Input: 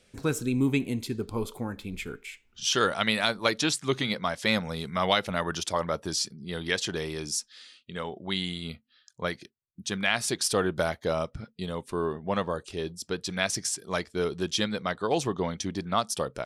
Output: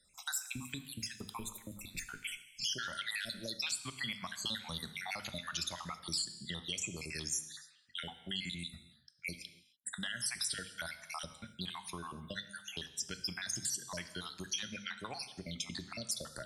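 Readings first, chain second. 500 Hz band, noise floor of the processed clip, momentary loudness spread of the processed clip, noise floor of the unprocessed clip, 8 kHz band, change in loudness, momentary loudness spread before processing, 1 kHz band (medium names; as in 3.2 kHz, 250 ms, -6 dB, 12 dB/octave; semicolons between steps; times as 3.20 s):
-22.0 dB, -65 dBFS, 8 LU, -67 dBFS, -5.0 dB, -10.5 dB, 12 LU, -15.5 dB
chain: random holes in the spectrogram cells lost 64%; hum notches 50/100/150/200/250 Hz; compression, threshold -32 dBFS, peak gain reduction 10 dB; peaking EQ 430 Hz -12.5 dB 1.1 oct; peak limiter -29 dBFS, peak gain reduction 8.5 dB; gate -56 dBFS, range -17 dB; treble shelf 2.3 kHz +10 dB; gated-style reverb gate 320 ms falling, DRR 10 dB; three bands compressed up and down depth 40%; trim -3.5 dB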